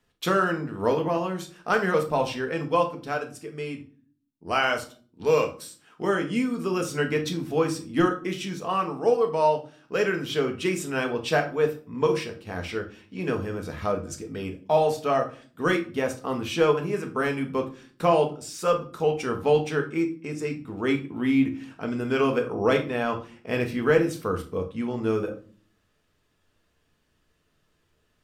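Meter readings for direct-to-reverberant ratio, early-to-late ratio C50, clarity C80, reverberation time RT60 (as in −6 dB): 3.5 dB, 12.0 dB, 17.5 dB, 0.45 s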